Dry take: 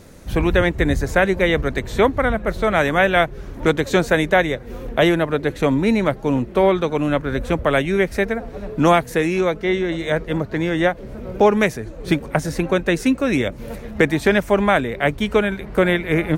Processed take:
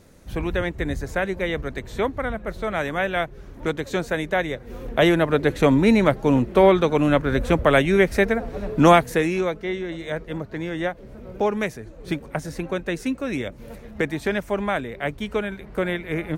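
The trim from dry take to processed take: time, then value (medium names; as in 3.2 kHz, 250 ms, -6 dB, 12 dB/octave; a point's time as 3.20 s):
4.23 s -8 dB
5.38 s +1 dB
8.95 s +1 dB
9.74 s -8 dB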